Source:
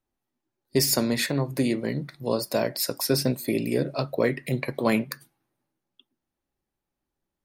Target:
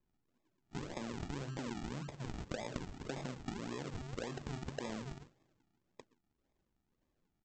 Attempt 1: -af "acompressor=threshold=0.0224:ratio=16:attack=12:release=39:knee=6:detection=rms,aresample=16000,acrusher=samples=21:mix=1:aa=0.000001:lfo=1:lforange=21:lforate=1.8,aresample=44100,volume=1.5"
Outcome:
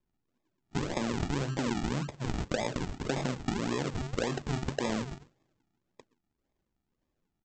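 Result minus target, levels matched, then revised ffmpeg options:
compression: peak gain reduction -11 dB
-af "acompressor=threshold=0.00596:ratio=16:attack=12:release=39:knee=6:detection=rms,aresample=16000,acrusher=samples=21:mix=1:aa=0.000001:lfo=1:lforange=21:lforate=1.8,aresample=44100,volume=1.5"

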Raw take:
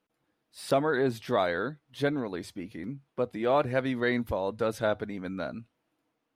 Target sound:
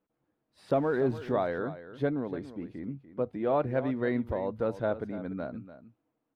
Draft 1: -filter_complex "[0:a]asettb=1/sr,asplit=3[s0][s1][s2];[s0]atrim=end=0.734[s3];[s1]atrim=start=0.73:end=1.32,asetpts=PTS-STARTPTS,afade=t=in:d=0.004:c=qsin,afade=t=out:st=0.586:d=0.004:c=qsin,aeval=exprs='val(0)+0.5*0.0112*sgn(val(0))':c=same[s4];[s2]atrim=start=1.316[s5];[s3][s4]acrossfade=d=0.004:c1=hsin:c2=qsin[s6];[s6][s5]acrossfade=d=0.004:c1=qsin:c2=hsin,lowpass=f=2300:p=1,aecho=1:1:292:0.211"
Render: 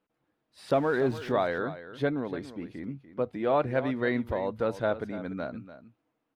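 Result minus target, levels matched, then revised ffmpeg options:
2 kHz band +4.0 dB
-filter_complex "[0:a]asettb=1/sr,asplit=3[s0][s1][s2];[s0]atrim=end=0.734[s3];[s1]atrim=start=0.73:end=1.32,asetpts=PTS-STARTPTS,afade=t=in:d=0.004:c=qsin,afade=t=out:st=0.586:d=0.004:c=qsin,aeval=exprs='val(0)+0.5*0.0112*sgn(val(0))':c=same[s4];[s2]atrim=start=1.316[s5];[s3][s4]acrossfade=d=0.004:c1=hsin:c2=qsin[s6];[s6][s5]acrossfade=d=0.004:c1=qsin:c2=hsin,lowpass=f=770:p=1,aecho=1:1:292:0.211"

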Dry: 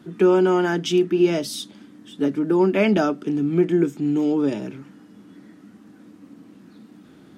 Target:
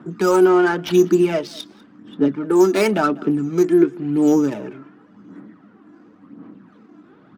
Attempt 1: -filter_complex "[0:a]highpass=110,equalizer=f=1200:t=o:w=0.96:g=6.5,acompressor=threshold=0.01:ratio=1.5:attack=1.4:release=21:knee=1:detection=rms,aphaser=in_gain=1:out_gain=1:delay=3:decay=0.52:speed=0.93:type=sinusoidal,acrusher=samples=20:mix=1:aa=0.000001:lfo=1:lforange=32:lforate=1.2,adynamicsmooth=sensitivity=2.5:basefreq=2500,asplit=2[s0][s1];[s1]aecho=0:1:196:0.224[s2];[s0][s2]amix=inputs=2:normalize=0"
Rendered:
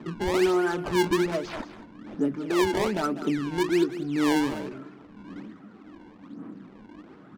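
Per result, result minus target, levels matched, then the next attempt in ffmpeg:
compression: peak gain reduction +10.5 dB; decimation with a swept rate: distortion +14 dB; echo-to-direct +10.5 dB
-filter_complex "[0:a]highpass=110,equalizer=f=1200:t=o:w=0.96:g=6.5,aphaser=in_gain=1:out_gain=1:delay=3:decay=0.52:speed=0.93:type=sinusoidal,acrusher=samples=20:mix=1:aa=0.000001:lfo=1:lforange=32:lforate=1.2,adynamicsmooth=sensitivity=2.5:basefreq=2500,asplit=2[s0][s1];[s1]aecho=0:1:196:0.224[s2];[s0][s2]amix=inputs=2:normalize=0"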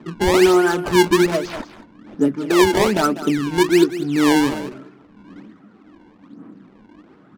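decimation with a swept rate: distortion +14 dB; echo-to-direct +10.5 dB
-filter_complex "[0:a]highpass=110,equalizer=f=1200:t=o:w=0.96:g=6.5,aphaser=in_gain=1:out_gain=1:delay=3:decay=0.52:speed=0.93:type=sinusoidal,acrusher=samples=4:mix=1:aa=0.000001:lfo=1:lforange=6.4:lforate=1.2,adynamicsmooth=sensitivity=2.5:basefreq=2500,asplit=2[s0][s1];[s1]aecho=0:1:196:0.224[s2];[s0][s2]amix=inputs=2:normalize=0"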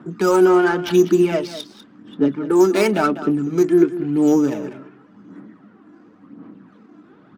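echo-to-direct +10.5 dB
-filter_complex "[0:a]highpass=110,equalizer=f=1200:t=o:w=0.96:g=6.5,aphaser=in_gain=1:out_gain=1:delay=3:decay=0.52:speed=0.93:type=sinusoidal,acrusher=samples=4:mix=1:aa=0.000001:lfo=1:lforange=6.4:lforate=1.2,adynamicsmooth=sensitivity=2.5:basefreq=2500,asplit=2[s0][s1];[s1]aecho=0:1:196:0.0668[s2];[s0][s2]amix=inputs=2:normalize=0"

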